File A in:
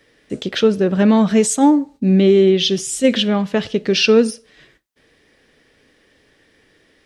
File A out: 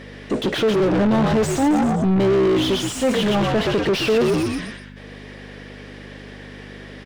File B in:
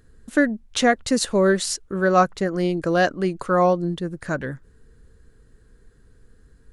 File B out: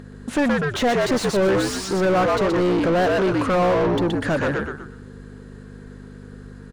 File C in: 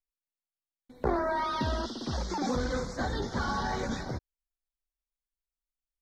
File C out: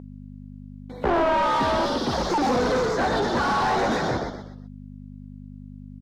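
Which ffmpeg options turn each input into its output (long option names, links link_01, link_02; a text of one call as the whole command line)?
ffmpeg -i in.wav -filter_complex "[0:a]equalizer=frequency=1500:width=1.3:gain=-3.5,asplit=5[link_01][link_02][link_03][link_04][link_05];[link_02]adelay=123,afreqshift=-65,volume=-5.5dB[link_06];[link_03]adelay=246,afreqshift=-130,volume=-14.1dB[link_07];[link_04]adelay=369,afreqshift=-195,volume=-22.8dB[link_08];[link_05]adelay=492,afreqshift=-260,volume=-31.4dB[link_09];[link_01][link_06][link_07][link_08][link_09]amix=inputs=5:normalize=0,aeval=exprs='val(0)+0.00708*(sin(2*PI*50*n/s)+sin(2*PI*2*50*n/s)/2+sin(2*PI*3*50*n/s)/3+sin(2*PI*4*50*n/s)/4+sin(2*PI*5*50*n/s)/5)':channel_layout=same,asoftclip=type=tanh:threshold=-9.5dB,asplit=2[link_10][link_11];[link_11]highpass=frequency=720:poles=1,volume=30dB,asoftclip=type=tanh:threshold=-9.5dB[link_12];[link_10][link_12]amix=inputs=2:normalize=0,lowpass=frequency=1400:poles=1,volume=-6dB,volume=-2.5dB" out.wav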